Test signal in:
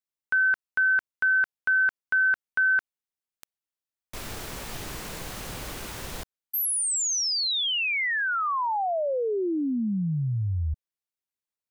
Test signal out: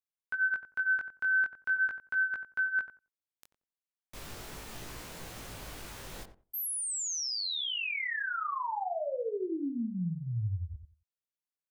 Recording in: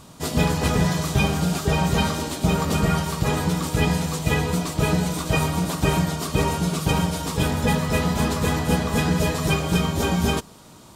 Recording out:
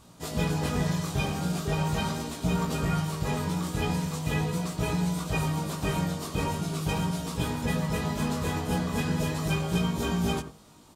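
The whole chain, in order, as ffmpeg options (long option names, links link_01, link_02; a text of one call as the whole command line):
ffmpeg -i in.wav -filter_complex "[0:a]asplit=2[link_01][link_02];[link_02]adelay=90,lowpass=frequency=1000:poles=1,volume=-8dB,asplit=2[link_03][link_04];[link_04]adelay=90,lowpass=frequency=1000:poles=1,volume=0.2,asplit=2[link_05][link_06];[link_06]adelay=90,lowpass=frequency=1000:poles=1,volume=0.2[link_07];[link_01][link_03][link_05][link_07]amix=inputs=4:normalize=0,flanger=delay=17:depth=4.7:speed=0.4,volume=-5dB" out.wav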